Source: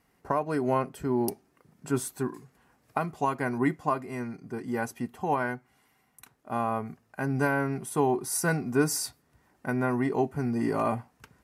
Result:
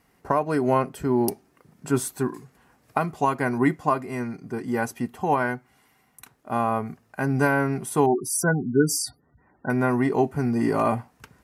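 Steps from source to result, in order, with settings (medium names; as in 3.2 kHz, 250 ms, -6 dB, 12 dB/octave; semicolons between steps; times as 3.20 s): 8.06–9.70 s: spectral gate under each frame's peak -15 dB strong; trim +5 dB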